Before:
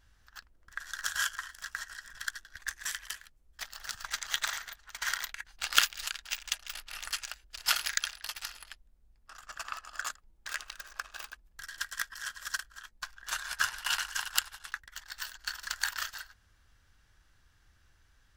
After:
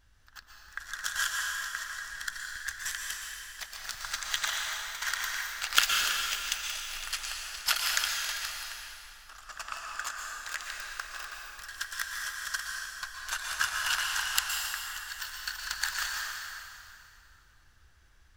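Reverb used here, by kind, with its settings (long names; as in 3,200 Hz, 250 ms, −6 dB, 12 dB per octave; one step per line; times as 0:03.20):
dense smooth reverb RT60 2.7 s, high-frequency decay 0.85×, pre-delay 105 ms, DRR −0.5 dB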